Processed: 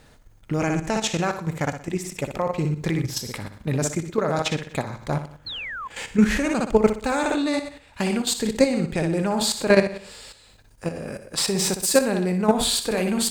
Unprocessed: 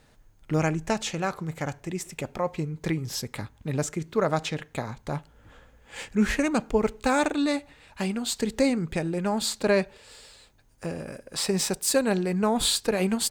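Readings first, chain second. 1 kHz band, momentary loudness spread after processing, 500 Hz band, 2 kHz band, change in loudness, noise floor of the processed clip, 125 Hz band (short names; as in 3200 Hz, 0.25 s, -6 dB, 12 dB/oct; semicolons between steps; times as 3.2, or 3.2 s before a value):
+3.0 dB, 12 LU, +4.0 dB, +3.5 dB, +3.5 dB, -53 dBFS, +4.0 dB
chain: flutter echo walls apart 10.4 m, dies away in 0.51 s; painted sound fall, 5.46–5.88, 980–4400 Hz -37 dBFS; level quantiser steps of 10 dB; gain +7.5 dB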